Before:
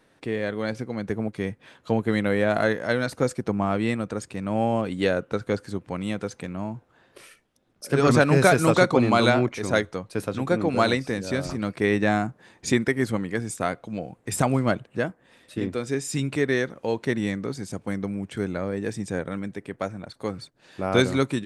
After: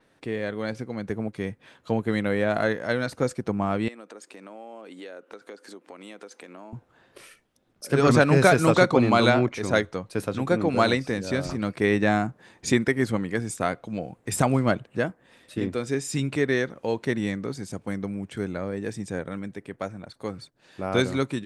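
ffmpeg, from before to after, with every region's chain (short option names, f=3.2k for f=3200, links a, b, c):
-filter_complex "[0:a]asettb=1/sr,asplit=3[a][b][c];[a]atrim=end=3.884[d];[b]atrim=start=3.88:end=6.73,asetpts=PTS-STARTPTS,afade=t=in:d=0.004:c=qsin,afade=t=out:st=2.846:d=0.004:c=qsin,highpass=f=280:w=0.5412,highpass=f=280:w=1.3066,acompressor=threshold=-40dB:ratio=4:attack=3.2:release=140:knee=1:detection=peak[e];[c]atrim=start=6.726[f];[d][e]acrossfade=d=0.004:c1=hsin:c2=qsin[g];[g][f]acrossfade=d=0.004:c1=qsin:c2=hsin,dynaudnorm=f=290:g=31:m=4dB,adynamicequalizer=threshold=0.00708:dfrequency=7500:dqfactor=0.7:tfrequency=7500:tqfactor=0.7:attack=5:release=100:ratio=0.375:range=2.5:mode=cutabove:tftype=highshelf,volume=-2dB"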